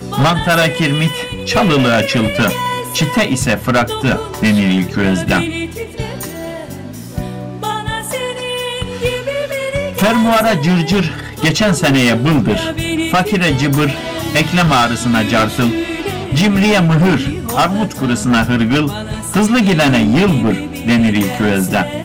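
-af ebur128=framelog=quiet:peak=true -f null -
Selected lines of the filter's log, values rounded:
Integrated loudness:
  I:         -14.3 LUFS
  Threshold: -24.5 LUFS
Loudness range:
  LRA:         7.0 LU
  Threshold: -34.6 LUFS
  LRA low:   -20.2 LUFS
  LRA high:  -13.2 LUFS
True peak:
  Peak:       -6.2 dBFS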